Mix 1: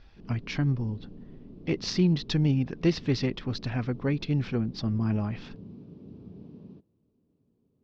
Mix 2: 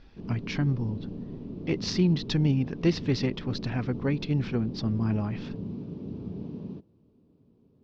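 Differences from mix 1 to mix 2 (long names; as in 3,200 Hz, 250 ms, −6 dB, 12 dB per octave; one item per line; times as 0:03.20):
background +9.0 dB
master: add parametric band 920 Hz +2 dB 0.21 octaves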